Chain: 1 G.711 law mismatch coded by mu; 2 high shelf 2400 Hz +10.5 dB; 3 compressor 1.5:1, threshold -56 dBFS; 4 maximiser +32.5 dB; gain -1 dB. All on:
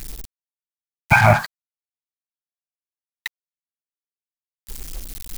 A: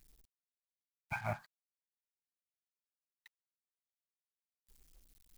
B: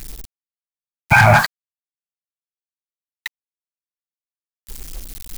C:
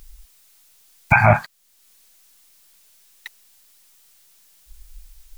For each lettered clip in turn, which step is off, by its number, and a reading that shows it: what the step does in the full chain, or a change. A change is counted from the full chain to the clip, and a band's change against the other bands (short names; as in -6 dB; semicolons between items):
4, crest factor change +5.5 dB; 3, mean gain reduction 9.5 dB; 1, distortion -23 dB